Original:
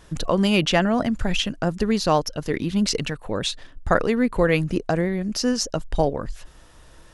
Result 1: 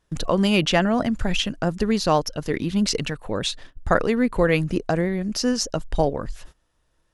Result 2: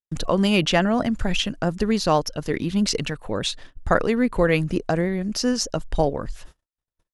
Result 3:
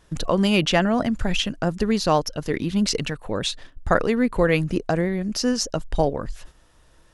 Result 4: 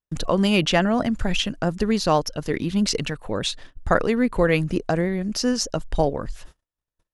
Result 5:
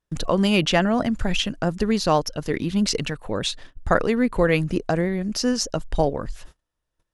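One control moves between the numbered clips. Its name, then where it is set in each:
gate, range: -20, -58, -7, -45, -33 dB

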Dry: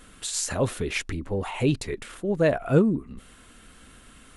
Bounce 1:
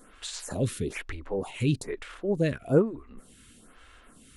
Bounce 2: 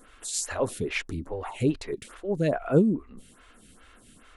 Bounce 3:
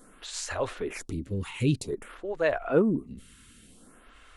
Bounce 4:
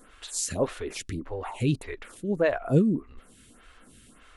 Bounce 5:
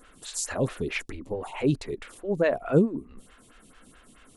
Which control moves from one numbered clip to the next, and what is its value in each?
photocell phaser, rate: 1.1, 2.4, 0.52, 1.7, 4.6 Hz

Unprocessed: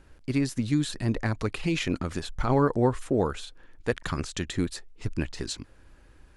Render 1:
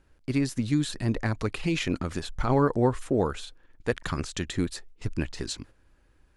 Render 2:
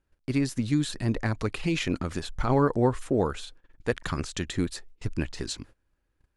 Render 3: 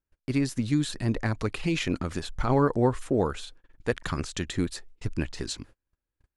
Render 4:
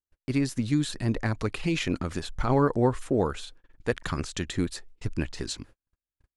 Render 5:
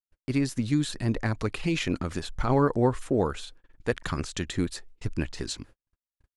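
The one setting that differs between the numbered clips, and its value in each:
gate, range: -8, -21, -34, -46, -60 dB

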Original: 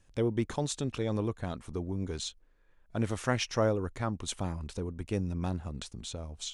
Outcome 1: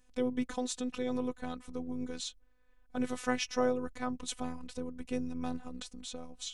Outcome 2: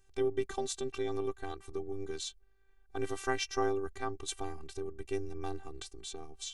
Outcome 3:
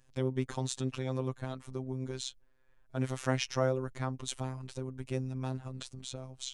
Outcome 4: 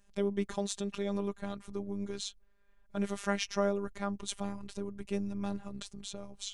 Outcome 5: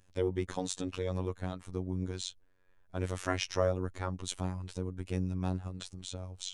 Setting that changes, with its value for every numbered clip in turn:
robotiser, frequency: 250, 390, 130, 200, 92 Hz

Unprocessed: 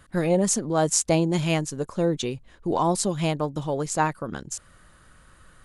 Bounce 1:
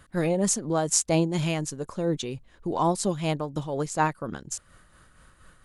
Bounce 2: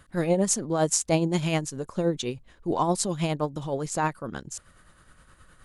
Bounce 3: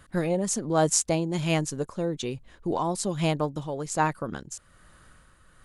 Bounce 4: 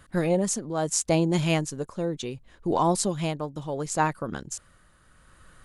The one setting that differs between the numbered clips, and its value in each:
tremolo, rate: 4.2, 9.6, 1.2, 0.71 Hz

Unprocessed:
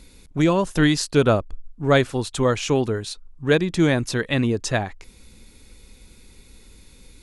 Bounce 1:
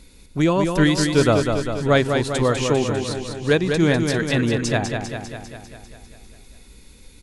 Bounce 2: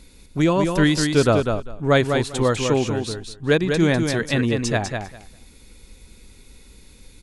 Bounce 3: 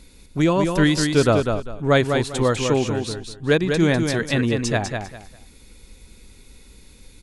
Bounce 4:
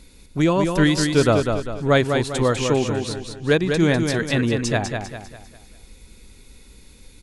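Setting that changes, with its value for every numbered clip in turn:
feedback echo, feedback: 62, 16, 24, 41%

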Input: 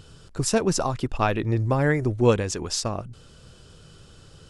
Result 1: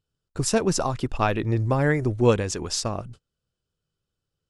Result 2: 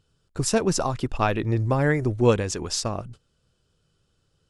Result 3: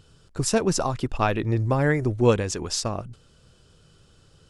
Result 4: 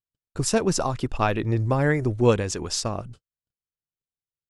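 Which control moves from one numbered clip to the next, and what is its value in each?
gate, range: -34, -20, -7, -56 dB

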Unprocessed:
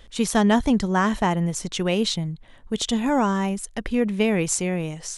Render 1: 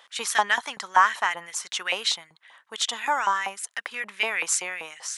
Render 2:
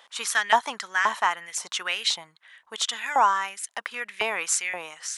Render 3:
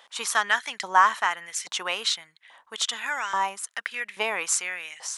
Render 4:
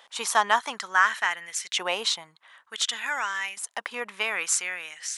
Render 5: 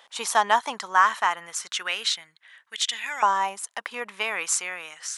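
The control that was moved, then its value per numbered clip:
LFO high-pass, rate: 5.2, 1.9, 1.2, 0.56, 0.31 Hz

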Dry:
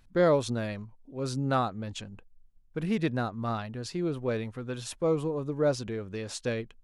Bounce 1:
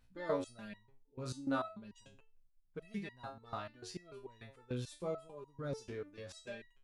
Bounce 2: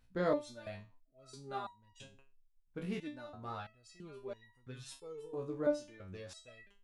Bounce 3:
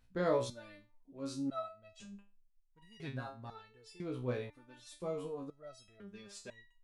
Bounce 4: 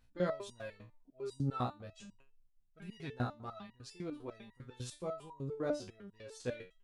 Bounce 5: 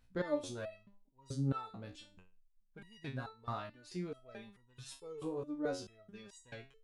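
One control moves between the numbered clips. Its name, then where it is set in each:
stepped resonator, rate: 6.8, 3, 2, 10, 4.6 Hz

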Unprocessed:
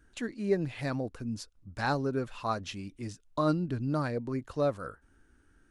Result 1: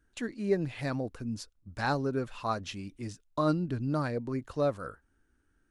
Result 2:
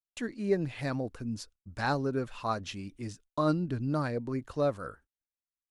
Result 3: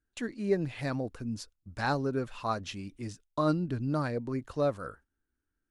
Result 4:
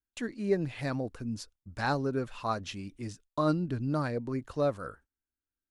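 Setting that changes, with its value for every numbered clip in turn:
gate, range: -8, -50, -21, -34 dB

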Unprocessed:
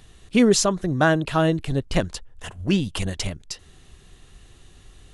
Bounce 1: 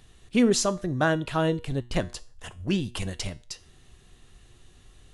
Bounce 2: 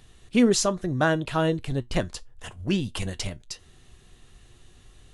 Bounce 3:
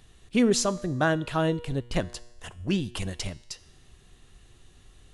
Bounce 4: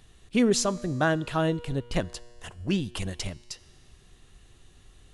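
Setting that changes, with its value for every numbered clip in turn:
resonator, decay: 0.39, 0.16, 0.96, 2 s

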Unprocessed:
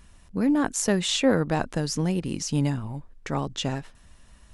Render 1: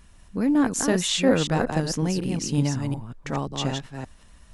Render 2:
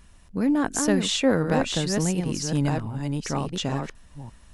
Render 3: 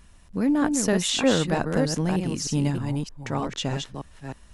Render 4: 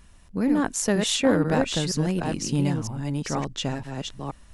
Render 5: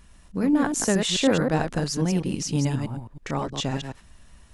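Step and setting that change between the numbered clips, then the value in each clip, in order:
reverse delay, time: 0.184, 0.716, 0.309, 0.479, 0.106 s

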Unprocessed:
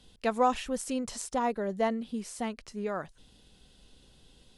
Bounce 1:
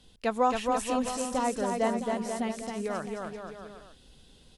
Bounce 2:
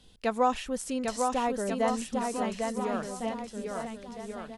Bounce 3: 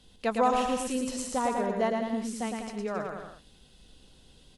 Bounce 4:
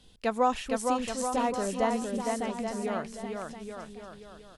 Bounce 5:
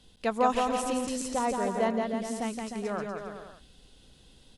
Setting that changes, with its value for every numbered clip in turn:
bouncing-ball echo, first gap: 0.27, 0.8, 0.11, 0.46, 0.17 s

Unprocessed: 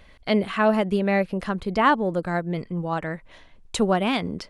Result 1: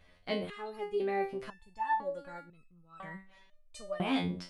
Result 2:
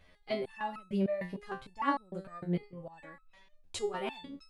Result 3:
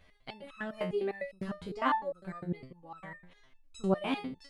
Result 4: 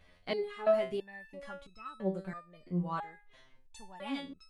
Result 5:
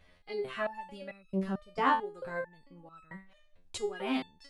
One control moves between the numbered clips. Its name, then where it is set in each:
stepped resonator, rate: 2, 6.6, 9.9, 3, 4.5 Hz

